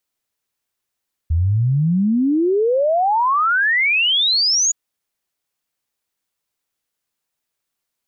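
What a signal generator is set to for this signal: log sweep 77 Hz -> 6.9 kHz 3.42 s -13.5 dBFS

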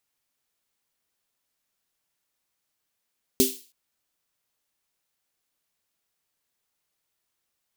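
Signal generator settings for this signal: snare drum length 0.32 s, tones 260 Hz, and 390 Hz, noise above 3 kHz, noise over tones -2.5 dB, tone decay 0.24 s, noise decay 0.40 s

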